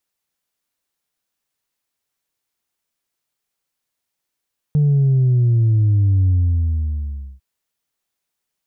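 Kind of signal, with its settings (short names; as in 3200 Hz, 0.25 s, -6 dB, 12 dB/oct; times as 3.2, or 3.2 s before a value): sub drop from 150 Hz, over 2.65 s, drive 1 dB, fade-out 1.12 s, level -12 dB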